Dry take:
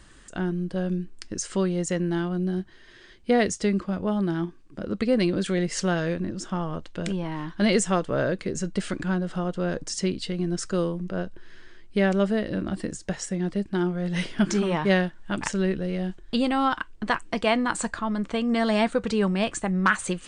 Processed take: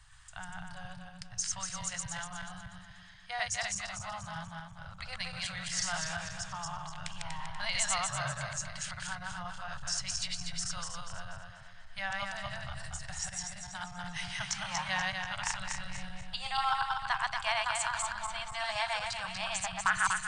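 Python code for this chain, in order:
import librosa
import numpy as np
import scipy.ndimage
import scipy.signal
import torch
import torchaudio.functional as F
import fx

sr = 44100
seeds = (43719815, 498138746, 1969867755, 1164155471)

y = fx.reverse_delay_fb(x, sr, ms=121, feedback_pct=64, wet_db=-1)
y = fx.dynamic_eq(y, sr, hz=5700.0, q=1.1, threshold_db=-46.0, ratio=4.0, max_db=4)
y = scipy.signal.sosfilt(scipy.signal.ellip(3, 1.0, 50, [130.0, 790.0], 'bandstop', fs=sr, output='sos'), y)
y = y * 10.0 ** (-6.5 / 20.0)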